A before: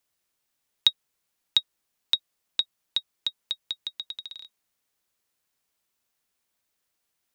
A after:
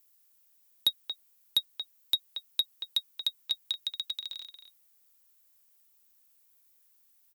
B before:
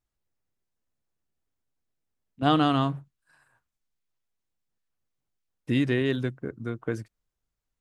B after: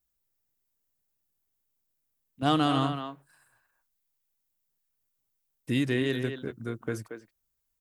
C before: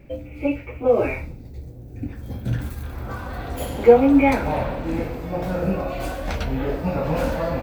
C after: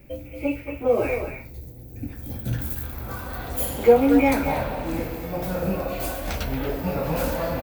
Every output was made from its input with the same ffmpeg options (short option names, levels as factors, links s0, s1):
-filter_complex "[0:a]aemphasis=mode=production:type=50fm,acrossover=split=860[s0][s1];[s1]asoftclip=type=tanh:threshold=0.178[s2];[s0][s2]amix=inputs=2:normalize=0,asplit=2[s3][s4];[s4]adelay=230,highpass=300,lowpass=3400,asoftclip=type=hard:threshold=0.316,volume=0.447[s5];[s3][s5]amix=inputs=2:normalize=0,volume=0.75"